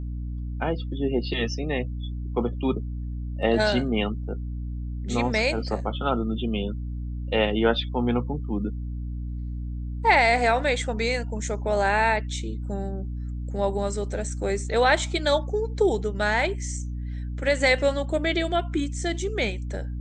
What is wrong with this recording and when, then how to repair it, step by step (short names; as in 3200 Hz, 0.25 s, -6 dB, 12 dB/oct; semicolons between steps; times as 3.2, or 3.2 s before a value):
hum 60 Hz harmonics 5 -31 dBFS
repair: de-hum 60 Hz, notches 5